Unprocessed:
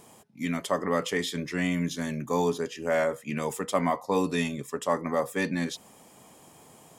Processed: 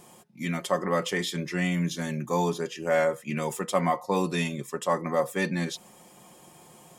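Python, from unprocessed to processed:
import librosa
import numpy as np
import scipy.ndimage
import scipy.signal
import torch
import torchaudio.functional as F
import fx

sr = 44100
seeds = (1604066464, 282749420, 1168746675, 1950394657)

y = x + 0.5 * np.pad(x, (int(5.6 * sr / 1000.0), 0))[:len(x)]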